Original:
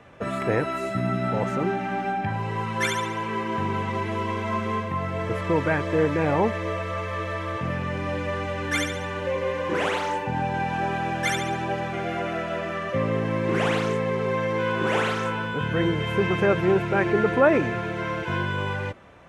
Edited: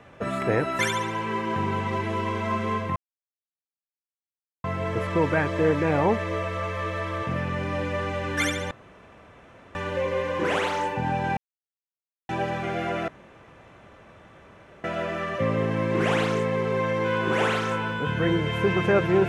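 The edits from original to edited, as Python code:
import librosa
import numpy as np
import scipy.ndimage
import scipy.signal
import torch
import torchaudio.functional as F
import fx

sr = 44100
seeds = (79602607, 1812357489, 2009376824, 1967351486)

y = fx.edit(x, sr, fx.cut(start_s=0.79, length_s=2.02),
    fx.insert_silence(at_s=4.98, length_s=1.68),
    fx.insert_room_tone(at_s=9.05, length_s=1.04),
    fx.silence(start_s=10.67, length_s=0.92),
    fx.insert_room_tone(at_s=12.38, length_s=1.76), tone=tone)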